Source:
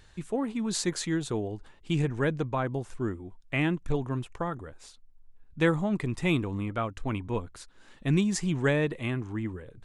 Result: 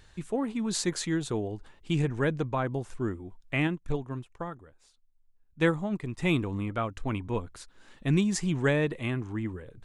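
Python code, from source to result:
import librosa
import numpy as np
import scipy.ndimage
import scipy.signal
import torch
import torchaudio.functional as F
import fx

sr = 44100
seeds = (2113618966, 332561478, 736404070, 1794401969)

y = fx.upward_expand(x, sr, threshold_db=-45.0, expansion=1.5, at=(3.67, 6.19))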